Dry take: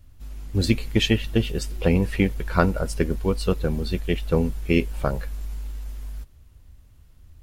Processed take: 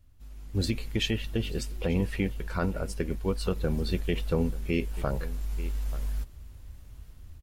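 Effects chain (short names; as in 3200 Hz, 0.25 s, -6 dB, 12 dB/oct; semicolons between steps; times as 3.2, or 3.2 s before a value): AGC gain up to 12 dB; echo 0.884 s -19.5 dB; limiter -7.5 dBFS, peak gain reduction 6.5 dB; gain -9 dB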